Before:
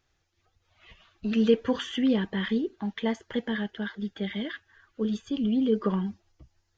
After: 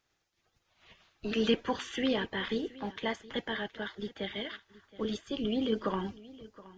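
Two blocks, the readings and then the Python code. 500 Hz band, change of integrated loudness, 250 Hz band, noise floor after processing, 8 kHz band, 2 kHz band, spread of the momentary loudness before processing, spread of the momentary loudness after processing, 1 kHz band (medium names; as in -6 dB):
-4.5 dB, -5.5 dB, -8.0 dB, -79 dBFS, no reading, -1.0 dB, 10 LU, 12 LU, +1.0 dB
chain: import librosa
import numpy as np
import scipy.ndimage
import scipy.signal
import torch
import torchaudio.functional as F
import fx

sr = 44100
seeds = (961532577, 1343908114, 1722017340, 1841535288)

y = fx.spec_clip(x, sr, under_db=15)
y = y + 10.0 ** (-19.5 / 20.0) * np.pad(y, (int(721 * sr / 1000.0), 0))[:len(y)]
y = y * librosa.db_to_amplitude(-5.5)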